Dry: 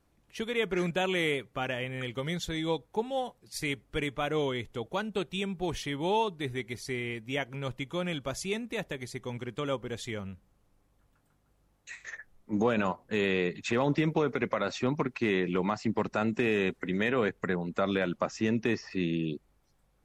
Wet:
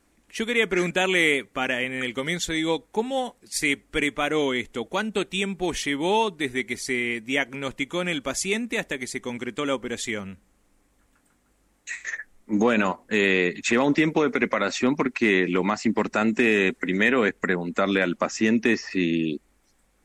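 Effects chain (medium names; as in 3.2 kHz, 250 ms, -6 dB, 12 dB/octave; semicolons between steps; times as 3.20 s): graphic EQ 125/250/2000/8000 Hz -10/+7/+7/+10 dB; trim +4 dB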